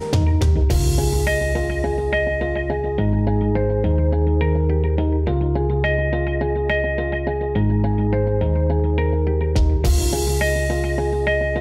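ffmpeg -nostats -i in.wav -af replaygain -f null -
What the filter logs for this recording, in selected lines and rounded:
track_gain = +4.7 dB
track_peak = 0.294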